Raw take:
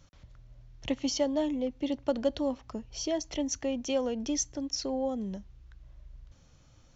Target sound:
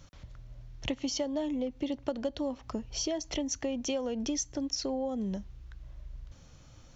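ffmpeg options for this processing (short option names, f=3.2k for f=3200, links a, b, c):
-af "acompressor=threshold=-35dB:ratio=5,volume=5dB"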